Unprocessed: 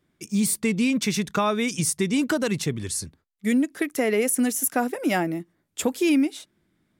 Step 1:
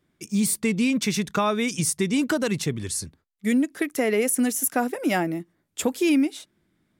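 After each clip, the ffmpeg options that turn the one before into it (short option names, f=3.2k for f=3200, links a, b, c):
-af anull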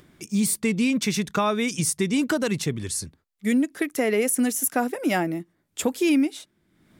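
-af "acompressor=mode=upward:threshold=-42dB:ratio=2.5"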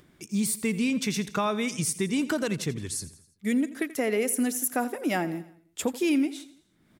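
-af "aecho=1:1:84|168|252|336:0.15|0.0748|0.0374|0.0187,volume=-4dB"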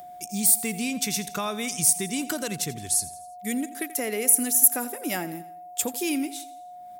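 -af "aemphasis=mode=production:type=75fm,aeval=exprs='val(0)+0.0141*sin(2*PI*720*n/s)':c=same,volume=-3dB"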